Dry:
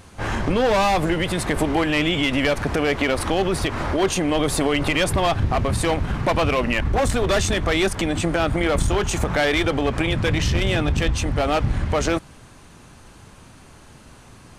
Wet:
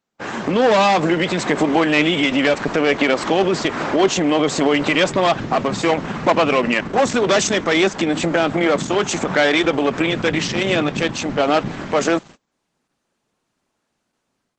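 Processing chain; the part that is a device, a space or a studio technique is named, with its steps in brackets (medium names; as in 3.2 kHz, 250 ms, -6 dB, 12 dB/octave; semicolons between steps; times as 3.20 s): 7.03–7.81 s: dynamic bell 5.9 kHz, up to +4 dB, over -42 dBFS, Q 3.3; video call (high-pass 170 Hz 24 dB/octave; level rider gain up to 6.5 dB; gate -35 dBFS, range -30 dB; Opus 12 kbps 48 kHz)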